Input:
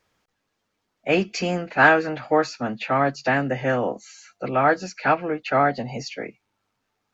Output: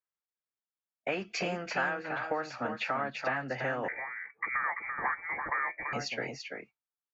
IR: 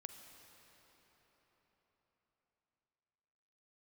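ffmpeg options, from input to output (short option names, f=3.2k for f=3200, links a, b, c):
-filter_complex "[0:a]agate=range=-33dB:threshold=-36dB:ratio=3:detection=peak,equalizer=f=1.4k:w=0.57:g=9.5,acompressor=threshold=-26dB:ratio=6,aecho=1:1:338:0.501,asettb=1/sr,asplit=3[a][b][c];[a]atrim=end=3.884[d];[b]atrim=start=3.88:end=5.93,asetpts=PTS-STARTPTS,afade=t=in:d=0.004:c=qsin,afade=t=out:st=2.046:d=0.004:c=qsin,lowpass=f=2.1k:t=q:w=0.5098,lowpass=f=2.1k:t=q:w=0.6013,lowpass=f=2.1k:t=q:w=0.9,lowpass=f=2.1k:t=q:w=2.563,afreqshift=-2500[e];[c]atrim=start=5.926[f];[d][e]acrossfade=d=0.004:c1=hsin:c2=qsin[g];[g][f]acrossfade=d=0.004:c1=qsin:c2=hsin,volume=-5dB"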